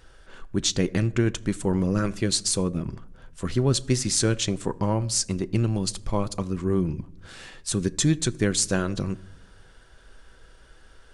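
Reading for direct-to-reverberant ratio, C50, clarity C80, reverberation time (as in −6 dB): 11.5 dB, 22.0 dB, 24.0 dB, 0.75 s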